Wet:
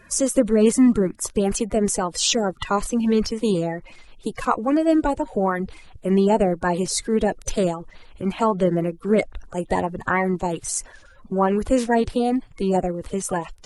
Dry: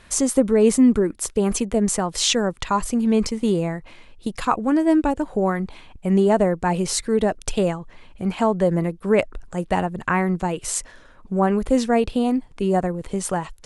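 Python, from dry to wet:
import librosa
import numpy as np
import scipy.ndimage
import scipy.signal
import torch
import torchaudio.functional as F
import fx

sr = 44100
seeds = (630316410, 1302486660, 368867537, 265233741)

y = fx.spec_quant(x, sr, step_db=30)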